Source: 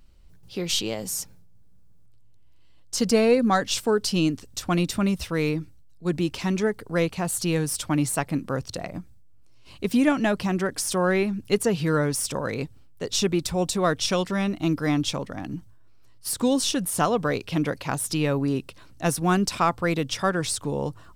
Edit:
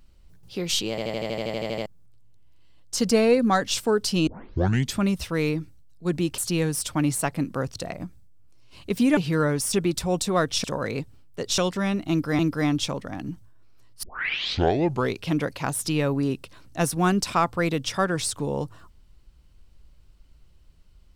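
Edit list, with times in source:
0:00.90: stutter in place 0.08 s, 12 plays
0:04.27: tape start 0.71 s
0:06.38–0:07.32: remove
0:10.11–0:11.71: remove
0:13.21–0:14.12: move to 0:12.27
0:14.64–0:14.93: repeat, 2 plays
0:16.28: tape start 1.15 s

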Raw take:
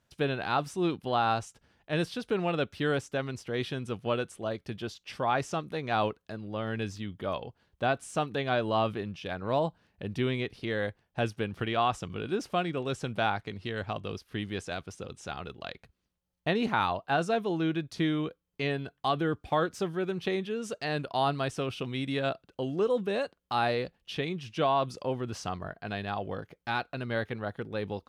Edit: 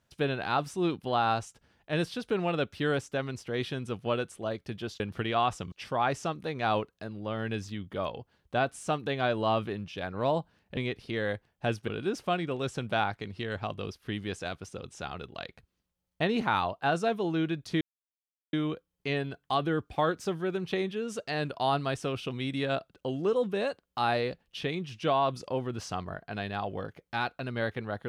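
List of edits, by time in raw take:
0:10.05–0:10.31: remove
0:11.42–0:12.14: move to 0:05.00
0:18.07: splice in silence 0.72 s

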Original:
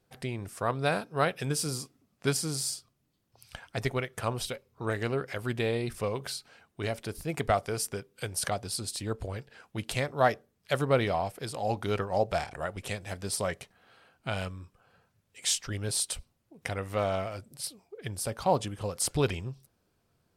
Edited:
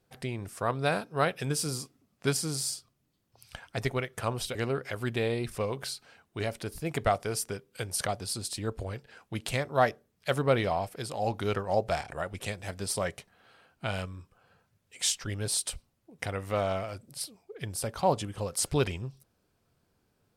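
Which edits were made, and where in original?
0:04.55–0:04.98: remove

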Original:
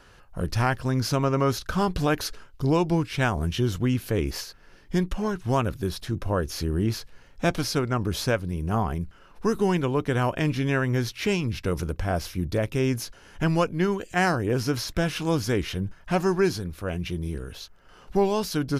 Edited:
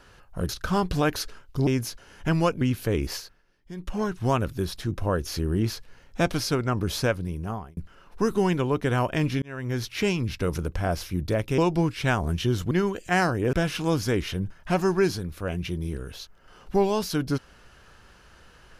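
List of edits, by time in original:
0:00.49–0:01.54: remove
0:02.72–0:03.85: swap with 0:12.82–0:13.76
0:04.43–0:05.23: duck −15.5 dB, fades 0.24 s
0:08.44–0:09.01: fade out
0:10.66–0:11.13: fade in
0:14.58–0:14.94: remove

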